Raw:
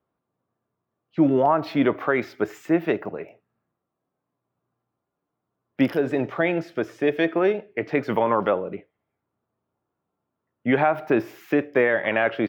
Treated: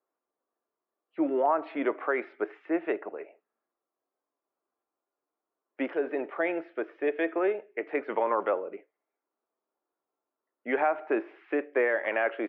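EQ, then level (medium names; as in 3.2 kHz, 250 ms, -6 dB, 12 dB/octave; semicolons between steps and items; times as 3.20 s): high-pass 320 Hz 24 dB/octave; low-pass 2.6 kHz 24 dB/octave; -5.5 dB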